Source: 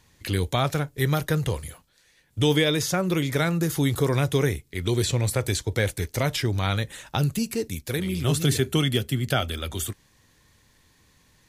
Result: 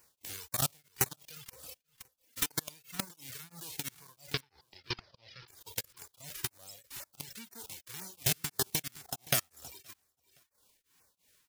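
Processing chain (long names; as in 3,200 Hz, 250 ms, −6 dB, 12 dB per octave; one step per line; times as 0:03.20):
spectral envelope flattened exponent 0.1
brickwall limiter −11 dBFS, peak gain reduction 9.5 dB
0:09.05–0:09.51: parametric band 730 Hz +11.5 dB 0.57 octaves
output level in coarse steps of 23 dB
auto-filter notch saw down 2 Hz 480–3,700 Hz
reverb reduction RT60 1.2 s
downward compressor 5 to 1, threshold −30 dBFS, peak gain reduction 9 dB
0:01.46–0:02.51: comb filter 3.9 ms, depth 75%
0:04.31–0:05.48: elliptic low-pass filter 5,100 Hz, stop band 40 dB
repeating echo 520 ms, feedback 16%, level −23 dB
tremolo along a rectified sine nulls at 3 Hz
level +5 dB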